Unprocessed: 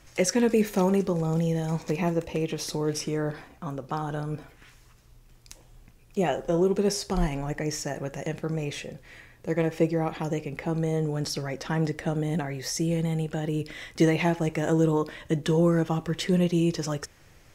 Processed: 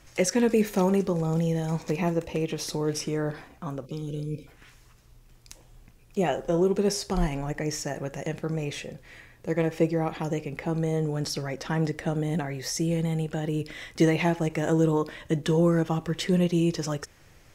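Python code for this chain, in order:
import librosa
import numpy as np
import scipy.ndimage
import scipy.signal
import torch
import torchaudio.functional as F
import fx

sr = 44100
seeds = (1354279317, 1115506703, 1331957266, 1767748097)

y = fx.spec_box(x, sr, start_s=3.86, length_s=0.62, low_hz=580.0, high_hz=2100.0, gain_db=-27)
y = fx.end_taper(y, sr, db_per_s=550.0)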